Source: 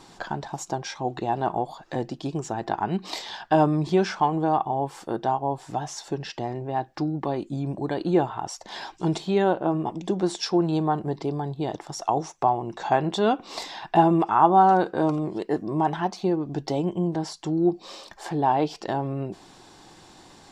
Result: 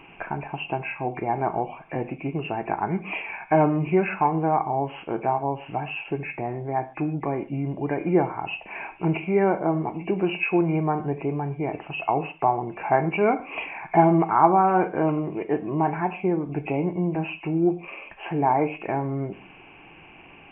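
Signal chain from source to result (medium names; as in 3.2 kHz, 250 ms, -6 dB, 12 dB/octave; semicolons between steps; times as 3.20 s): knee-point frequency compression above 2 kHz 4:1; gated-style reverb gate 170 ms falling, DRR 9 dB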